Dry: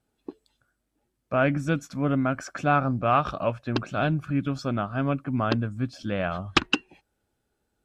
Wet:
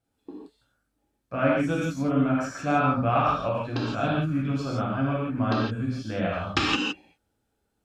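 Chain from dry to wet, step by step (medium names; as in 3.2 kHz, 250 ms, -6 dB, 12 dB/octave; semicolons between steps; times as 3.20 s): gated-style reverb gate 190 ms flat, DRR -5.5 dB; trim -6.5 dB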